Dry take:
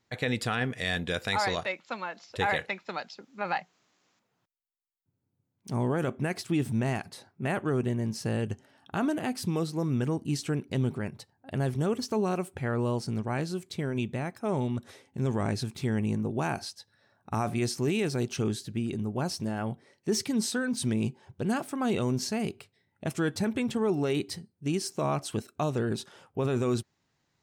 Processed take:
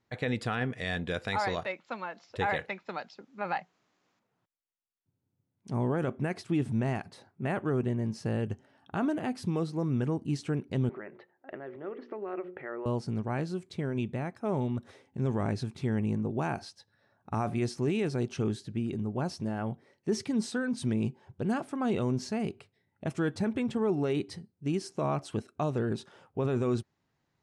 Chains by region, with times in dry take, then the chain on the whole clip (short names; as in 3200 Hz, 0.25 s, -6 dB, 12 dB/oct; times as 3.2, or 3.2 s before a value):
10.89–12.86 notches 60/120/180/240/300/360/420/480/540 Hz + compressor 4:1, threshold -36 dBFS + speaker cabinet 330–2900 Hz, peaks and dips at 360 Hz +10 dB, 590 Hz +5 dB, 1300 Hz +5 dB, 1900 Hz +10 dB
whole clip: elliptic low-pass 11000 Hz, stop band 40 dB; high shelf 3200 Hz -11 dB